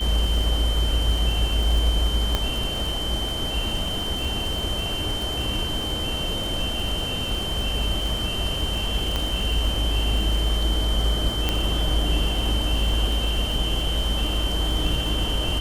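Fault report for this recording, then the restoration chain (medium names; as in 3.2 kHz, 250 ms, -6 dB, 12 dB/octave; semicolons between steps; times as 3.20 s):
crackle 57 per s -27 dBFS
whine 3.1 kHz -28 dBFS
2.35 s: pop -8 dBFS
9.16 s: pop -11 dBFS
11.49 s: pop -8 dBFS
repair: de-click; band-stop 3.1 kHz, Q 30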